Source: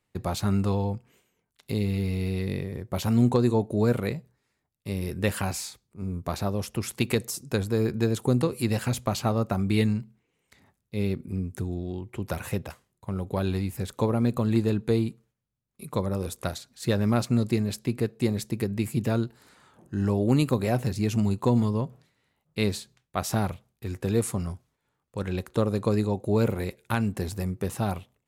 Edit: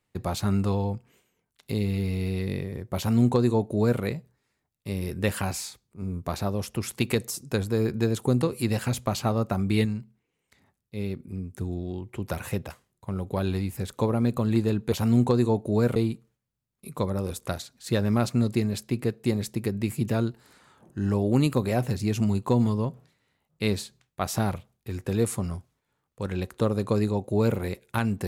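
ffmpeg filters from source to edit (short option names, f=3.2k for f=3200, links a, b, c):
-filter_complex "[0:a]asplit=5[a][b][c][d][e];[a]atrim=end=9.852[f];[b]atrim=start=9.848:end=11.612,asetpts=PTS-STARTPTS,volume=-4dB[g];[c]atrim=start=11.608:end=14.922[h];[d]atrim=start=2.968:end=4.012[i];[e]atrim=start=14.918[j];[f][g]acrossfade=d=0.004:c1=hsin:c2=hsin[k];[k][h]acrossfade=d=0.004:c1=hsin:c2=hsin[l];[l][i]acrossfade=d=0.004:c1=hsin:c2=hsin[m];[m][j]acrossfade=d=0.004:c1=hsin:c2=hsin"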